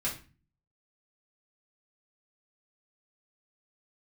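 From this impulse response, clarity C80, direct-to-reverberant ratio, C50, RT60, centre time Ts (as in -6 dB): 15.5 dB, -7.5 dB, 9.5 dB, 0.35 s, 22 ms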